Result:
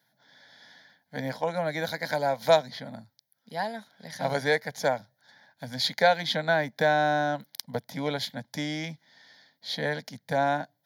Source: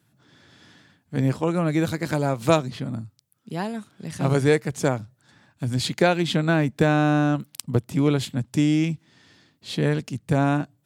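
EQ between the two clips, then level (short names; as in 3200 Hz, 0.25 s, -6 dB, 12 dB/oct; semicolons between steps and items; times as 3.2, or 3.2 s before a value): HPF 340 Hz 12 dB/oct; fixed phaser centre 1800 Hz, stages 8; +2.5 dB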